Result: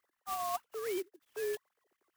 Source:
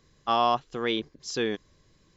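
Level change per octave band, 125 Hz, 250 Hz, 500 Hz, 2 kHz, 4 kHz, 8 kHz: under -20 dB, -14.5 dB, -7.5 dB, -12.0 dB, -18.0 dB, n/a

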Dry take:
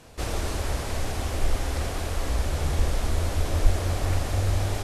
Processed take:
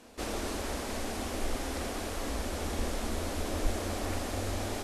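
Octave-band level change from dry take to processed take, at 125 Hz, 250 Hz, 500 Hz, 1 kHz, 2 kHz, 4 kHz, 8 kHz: -13.0, -0.5, -3.0, -3.5, -4.0, -3.5, -3.0 dB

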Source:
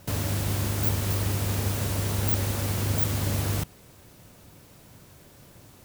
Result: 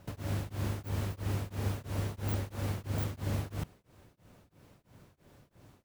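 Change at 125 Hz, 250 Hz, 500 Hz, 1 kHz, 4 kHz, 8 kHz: -7.5, -7.5, -7.5, -8.5, -13.0, -17.0 dB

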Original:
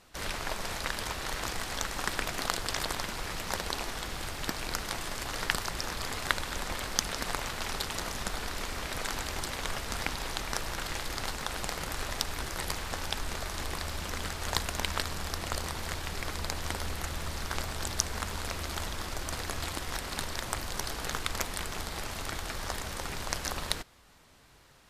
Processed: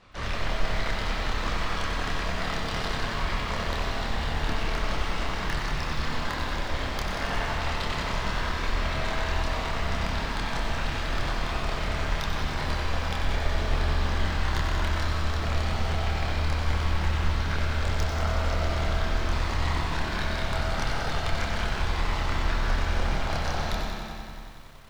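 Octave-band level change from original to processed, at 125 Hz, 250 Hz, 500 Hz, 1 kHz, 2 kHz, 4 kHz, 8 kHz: +11.5, +7.5, +6.5, +5.5, +4.5, +1.5, -7.5 dB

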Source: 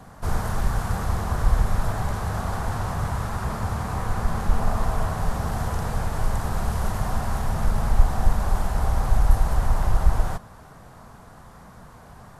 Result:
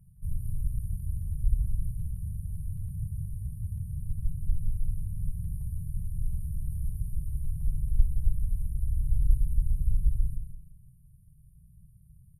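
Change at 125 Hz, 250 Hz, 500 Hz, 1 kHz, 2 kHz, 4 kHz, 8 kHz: -6.5 dB, -14.0 dB, under -40 dB, under -40 dB, under -40 dB, under -40 dB, -14.5 dB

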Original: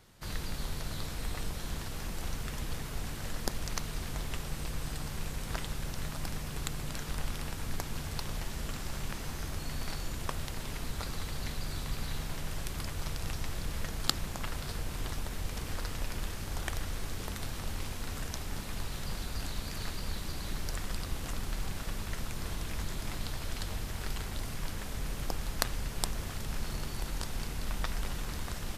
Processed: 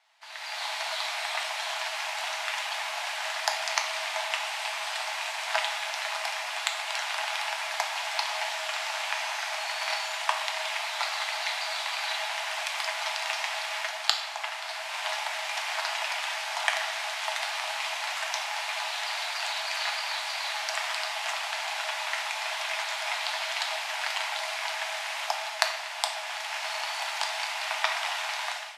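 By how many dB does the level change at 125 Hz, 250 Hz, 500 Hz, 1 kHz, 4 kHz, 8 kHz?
under -40 dB, under -40 dB, +7.0 dB, +13.5 dB, +12.0 dB, +5.5 dB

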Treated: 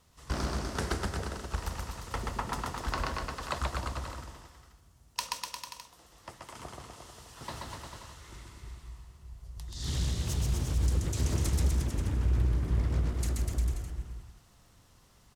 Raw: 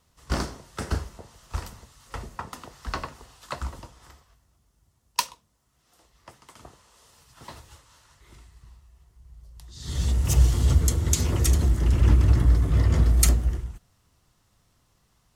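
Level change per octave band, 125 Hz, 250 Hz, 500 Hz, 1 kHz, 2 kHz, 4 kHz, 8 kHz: -8.0, -5.5, -3.0, -1.0, -1.5, -4.0, -9.5 dB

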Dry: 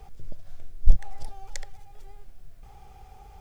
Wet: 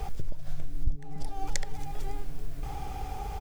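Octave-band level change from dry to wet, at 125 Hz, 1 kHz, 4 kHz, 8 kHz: -2.0 dB, +9.0 dB, +5.0 dB, n/a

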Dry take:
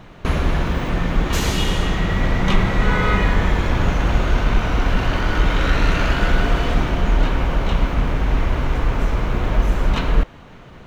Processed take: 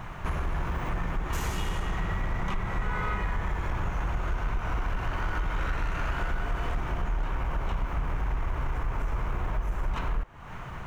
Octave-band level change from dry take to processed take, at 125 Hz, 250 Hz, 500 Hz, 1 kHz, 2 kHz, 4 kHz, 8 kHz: -11.5 dB, -16.0 dB, -14.5 dB, -9.0 dB, -11.5 dB, -17.0 dB, n/a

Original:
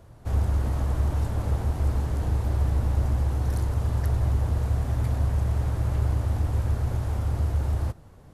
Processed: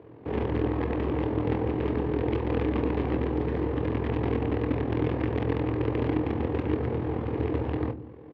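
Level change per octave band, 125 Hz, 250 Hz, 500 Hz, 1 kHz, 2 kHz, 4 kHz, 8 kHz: -6.5 dB, +9.5 dB, +10.5 dB, +3.0 dB, +5.0 dB, +0.5 dB, n/a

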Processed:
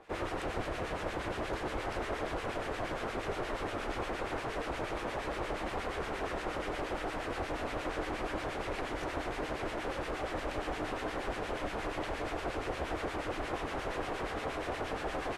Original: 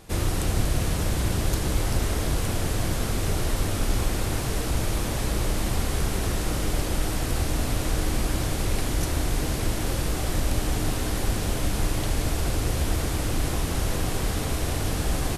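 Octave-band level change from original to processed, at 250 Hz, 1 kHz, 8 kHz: -10.0, -2.5, -21.5 dB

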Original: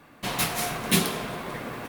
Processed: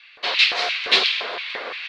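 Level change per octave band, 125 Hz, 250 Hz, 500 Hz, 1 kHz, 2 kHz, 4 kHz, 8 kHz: under -20 dB, -13.0 dB, +1.5 dB, +2.0 dB, +10.5 dB, +12.5 dB, -10.0 dB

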